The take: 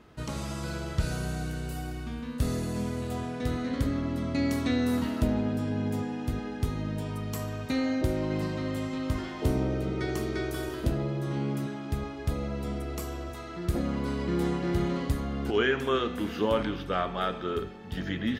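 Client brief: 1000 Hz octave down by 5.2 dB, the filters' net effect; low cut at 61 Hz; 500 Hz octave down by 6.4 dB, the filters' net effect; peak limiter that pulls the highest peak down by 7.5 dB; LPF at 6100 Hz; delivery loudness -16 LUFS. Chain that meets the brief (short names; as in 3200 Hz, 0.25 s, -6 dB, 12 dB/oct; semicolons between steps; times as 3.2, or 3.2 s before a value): HPF 61 Hz; LPF 6100 Hz; bell 500 Hz -7.5 dB; bell 1000 Hz -5 dB; gain +18.5 dB; limiter -5 dBFS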